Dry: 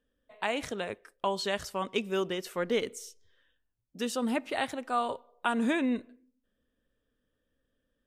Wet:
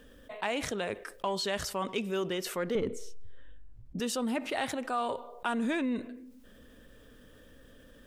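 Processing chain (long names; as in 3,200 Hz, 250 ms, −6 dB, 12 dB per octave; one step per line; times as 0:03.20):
0:02.75–0:04.00: spectral tilt −4 dB per octave
in parallel at −8 dB: soft clipping −29 dBFS, distortion −9 dB
on the sum: envelope flattener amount 50%
level −7.5 dB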